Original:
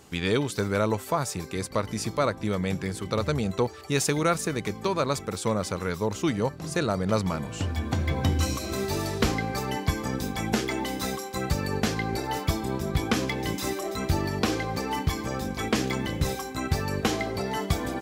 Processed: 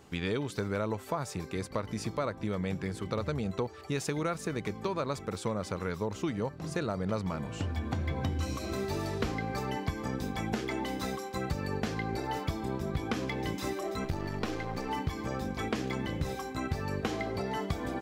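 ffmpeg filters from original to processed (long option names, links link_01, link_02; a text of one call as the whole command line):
ffmpeg -i in.wav -filter_complex "[0:a]asettb=1/sr,asplit=3[link_01][link_02][link_03];[link_01]atrim=end=14.044[link_04];[link_02]atrim=start=14.04:end=14.89,asetpts=PTS-STARTPTS,afade=type=in:duration=0.004:curve=qsin,afade=type=out:start_time=0.846:duration=0.004:curve=qsin,aeval=exprs='if(lt(val(0),0),0.447*val(0),val(0))':channel_layout=same[link_05];[link_03]atrim=start=14.886[link_06];[link_04][link_05]acrossfade=duration=0.004:curve1=hsin:curve2=qsin[link_07];[link_07][link_06]acrossfade=duration=0.004:curve1=qsin:curve2=hsin,equalizer=frequency=13000:width_type=o:width=2.1:gain=-8.5,acompressor=threshold=-27dB:ratio=3,volume=-2.5dB" out.wav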